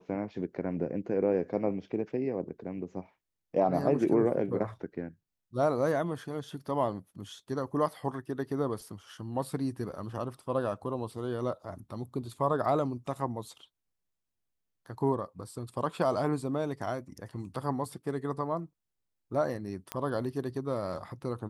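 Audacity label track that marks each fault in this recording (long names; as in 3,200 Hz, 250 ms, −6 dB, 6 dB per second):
19.920000	19.920000	click −17 dBFS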